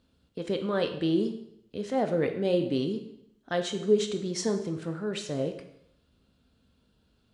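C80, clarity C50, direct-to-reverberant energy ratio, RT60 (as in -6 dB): 12.5 dB, 9.0 dB, 6.0 dB, 0.80 s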